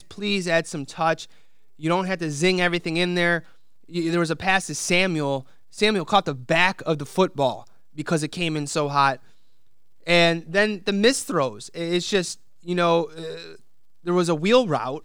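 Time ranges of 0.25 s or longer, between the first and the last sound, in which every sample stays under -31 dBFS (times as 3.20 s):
1.24–1.83 s
3.40–3.94 s
5.40–5.78 s
7.59–7.98 s
9.15–10.07 s
12.34–12.68 s
13.50–14.07 s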